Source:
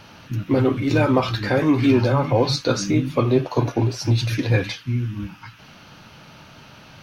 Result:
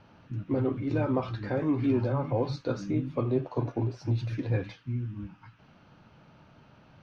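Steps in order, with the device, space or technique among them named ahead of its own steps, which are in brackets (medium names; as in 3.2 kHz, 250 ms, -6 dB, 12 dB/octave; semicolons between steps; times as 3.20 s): through cloth (low-pass 7 kHz 12 dB/octave; treble shelf 2 kHz -14.5 dB); trim -9 dB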